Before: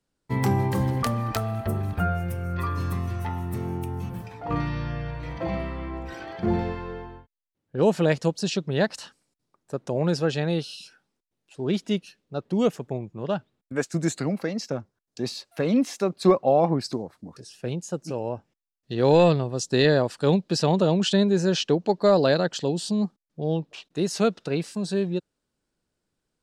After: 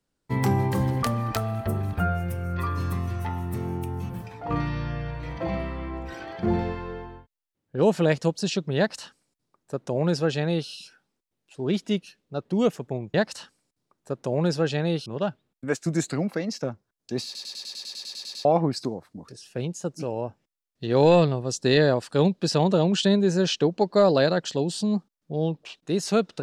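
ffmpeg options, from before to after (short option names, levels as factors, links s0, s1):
-filter_complex "[0:a]asplit=15[s0][s1][s2][s3][s4][s5][s6][s7][s8][s9][s10][s11][s12][s13][s14];[s0]atrim=end=13.142[s15];[s1]atrim=start=8.768:end=10.692[s16];[s2]atrim=start=13.138:end=15.432[s17];[s3]atrim=start=15.328:end=15.432[s18];[s4]atrim=start=15.328:end=15.432[s19];[s5]atrim=start=15.328:end=15.432[s20];[s6]atrim=start=15.328:end=15.432[s21];[s7]atrim=start=15.328:end=15.432[s22];[s8]atrim=start=15.328:end=15.432[s23];[s9]atrim=start=15.328:end=15.432[s24];[s10]atrim=start=15.328:end=15.432[s25];[s11]atrim=start=15.328:end=15.432[s26];[s12]atrim=start=15.328:end=15.432[s27];[s13]atrim=start=15.328:end=15.432[s28];[s14]atrim=start=16.528[s29];[s15][s16]acrossfade=d=0.004:c1=hsin:c2=hsin[s30];[s30][s17]acrossfade=d=0.004:c1=hsin:c2=hsin[s31];[s31][s18]acrossfade=d=0.004:c1=hsin:c2=hsin[s32];[s32][s19]acrossfade=d=0.004:c1=hsin:c2=hsin[s33];[s33][s20]acrossfade=d=0.004:c1=hsin:c2=hsin[s34];[s34][s21]acrossfade=d=0.004:c1=hsin:c2=hsin[s35];[s35][s22]acrossfade=d=0.004:c1=hsin:c2=hsin[s36];[s36][s23]acrossfade=d=0.004:c1=hsin:c2=hsin[s37];[s37][s24]acrossfade=d=0.004:c1=hsin:c2=hsin[s38];[s38][s25]acrossfade=d=0.004:c1=hsin:c2=hsin[s39];[s39][s26]acrossfade=d=0.004:c1=hsin:c2=hsin[s40];[s40][s27]acrossfade=d=0.004:c1=hsin:c2=hsin[s41];[s41][s28]acrossfade=d=0.004:c1=hsin:c2=hsin[s42];[s42][s29]acrossfade=d=0.004:c1=hsin:c2=hsin"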